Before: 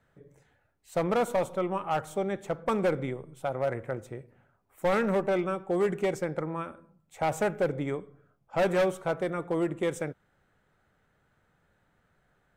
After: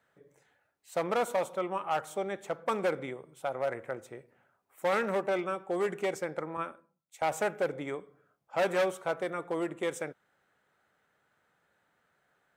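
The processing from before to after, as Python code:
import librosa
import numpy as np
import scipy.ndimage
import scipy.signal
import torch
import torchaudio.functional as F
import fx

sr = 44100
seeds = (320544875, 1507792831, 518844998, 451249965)

y = fx.highpass(x, sr, hz=510.0, slope=6)
y = fx.band_widen(y, sr, depth_pct=100, at=(6.57, 7.22))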